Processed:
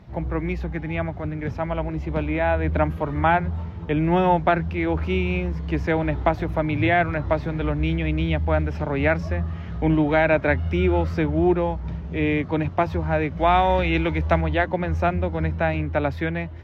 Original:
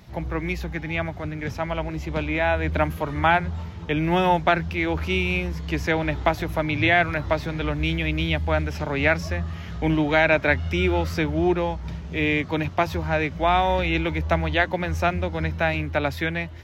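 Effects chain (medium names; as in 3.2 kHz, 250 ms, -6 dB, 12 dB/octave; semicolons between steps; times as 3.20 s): low-pass 1.1 kHz 6 dB/octave, from 13.37 s 2.5 kHz, from 14.41 s 1.1 kHz; trim +2.5 dB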